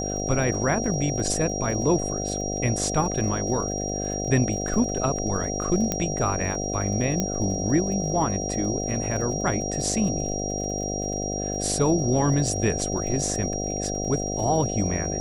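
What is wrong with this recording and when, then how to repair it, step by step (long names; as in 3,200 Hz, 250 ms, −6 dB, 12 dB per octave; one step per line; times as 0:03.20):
mains buzz 50 Hz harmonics 15 −30 dBFS
surface crackle 50 per second −35 dBFS
whistle 5,700 Hz −31 dBFS
0:05.92: click −9 dBFS
0:07.20: click −10 dBFS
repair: click removal
notch filter 5,700 Hz, Q 30
hum removal 50 Hz, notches 15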